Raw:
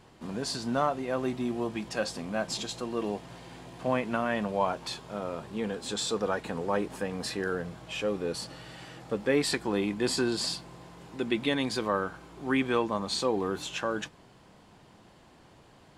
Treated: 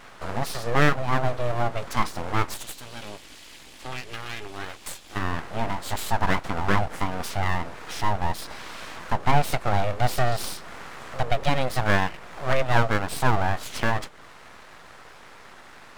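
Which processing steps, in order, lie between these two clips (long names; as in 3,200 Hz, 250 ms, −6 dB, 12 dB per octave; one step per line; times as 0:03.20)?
flat-topped bell 610 Hz +10.5 dB 2.9 octaves, from 0:02.54 −9 dB, from 0:05.15 +10 dB
full-wave rectification
one half of a high-frequency compander encoder only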